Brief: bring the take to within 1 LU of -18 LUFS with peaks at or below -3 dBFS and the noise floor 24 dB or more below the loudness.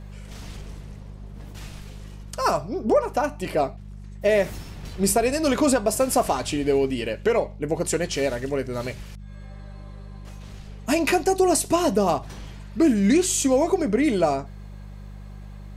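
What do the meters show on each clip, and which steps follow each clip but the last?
hum 50 Hz; highest harmonic 200 Hz; hum level -36 dBFS; loudness -22.5 LUFS; peak level -9.5 dBFS; loudness target -18.0 LUFS
-> de-hum 50 Hz, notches 4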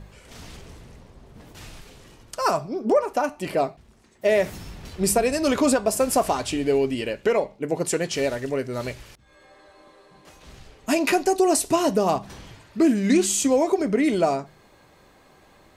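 hum not found; loudness -23.0 LUFS; peak level -9.0 dBFS; loudness target -18.0 LUFS
-> trim +5 dB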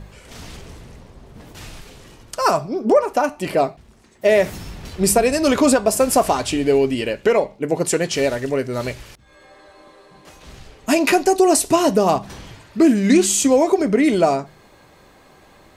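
loudness -18.0 LUFS; peak level -4.0 dBFS; noise floor -50 dBFS

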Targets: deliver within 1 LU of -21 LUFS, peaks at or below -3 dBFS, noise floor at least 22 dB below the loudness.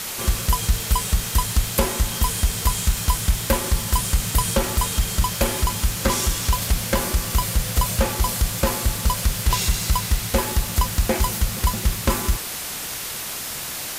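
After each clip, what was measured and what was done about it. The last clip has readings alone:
noise floor -31 dBFS; noise floor target -45 dBFS; loudness -22.5 LUFS; peak level -7.0 dBFS; loudness target -21.0 LUFS
-> noise reduction 14 dB, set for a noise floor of -31 dBFS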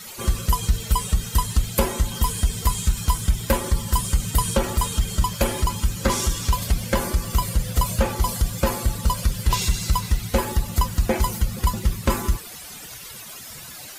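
noise floor -39 dBFS; noise floor target -46 dBFS
-> noise reduction 7 dB, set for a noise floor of -39 dBFS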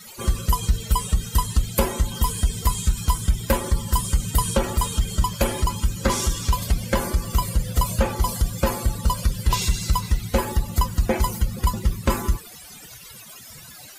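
noise floor -43 dBFS; noise floor target -46 dBFS
-> noise reduction 6 dB, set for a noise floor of -43 dBFS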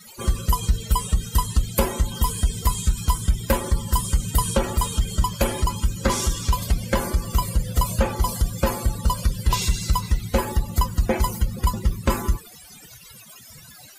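noise floor -46 dBFS; loudness -24.0 LUFS; peak level -7.5 dBFS; loudness target -21.0 LUFS
-> trim +3 dB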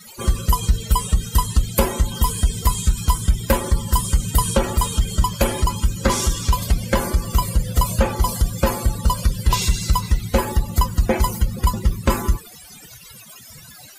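loudness -21.0 LUFS; peak level -4.5 dBFS; noise floor -43 dBFS

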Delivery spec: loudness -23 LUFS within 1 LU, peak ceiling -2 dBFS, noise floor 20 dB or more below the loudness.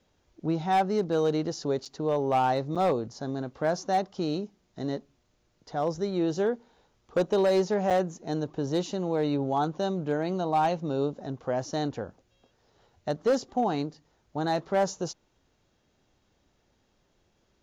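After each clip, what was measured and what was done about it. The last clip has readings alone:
clipped samples 0.6%; clipping level -18.5 dBFS; dropouts 3; longest dropout 6.6 ms; loudness -28.5 LUFS; peak level -18.5 dBFS; loudness target -23.0 LUFS
-> clip repair -18.5 dBFS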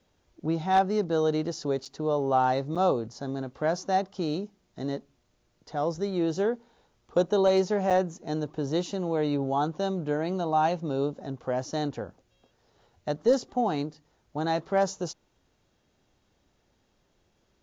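clipped samples 0.0%; dropouts 3; longest dropout 6.6 ms
-> interpolate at 1.85/2.75/7.90 s, 6.6 ms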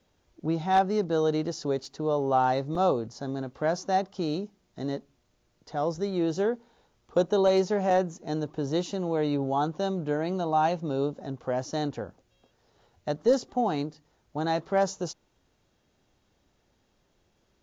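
dropouts 0; loudness -28.5 LUFS; peak level -11.5 dBFS; loudness target -23.0 LUFS
-> trim +5.5 dB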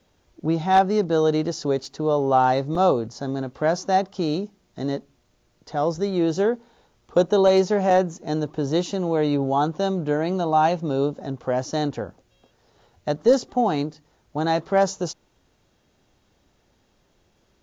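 loudness -23.0 LUFS; peak level -6.0 dBFS; noise floor -65 dBFS

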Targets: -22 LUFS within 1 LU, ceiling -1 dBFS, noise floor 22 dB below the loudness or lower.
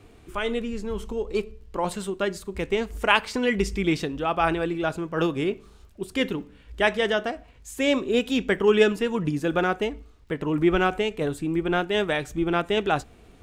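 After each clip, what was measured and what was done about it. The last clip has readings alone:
tick rate 28 per s; loudness -25.5 LUFS; peak level -3.5 dBFS; loudness target -22.0 LUFS
-> de-click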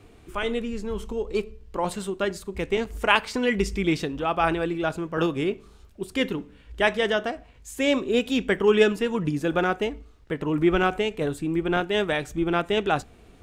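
tick rate 0 per s; loudness -25.5 LUFS; peak level -3.5 dBFS; loudness target -22.0 LUFS
-> trim +3.5 dB; peak limiter -1 dBFS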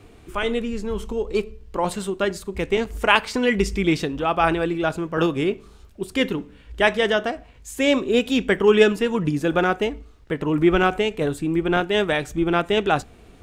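loudness -22.0 LUFS; peak level -1.0 dBFS; noise floor -48 dBFS

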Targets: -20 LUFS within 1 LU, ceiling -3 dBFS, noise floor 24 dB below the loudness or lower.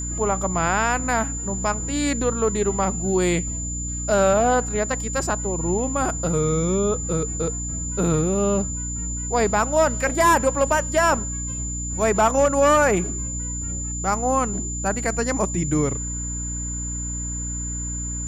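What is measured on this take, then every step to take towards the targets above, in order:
hum 60 Hz; highest harmonic 300 Hz; hum level -28 dBFS; steady tone 7.1 kHz; tone level -29 dBFS; loudness -22.0 LUFS; peak level -8.0 dBFS; loudness target -20.0 LUFS
-> de-hum 60 Hz, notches 5; band-stop 7.1 kHz, Q 30; trim +2 dB

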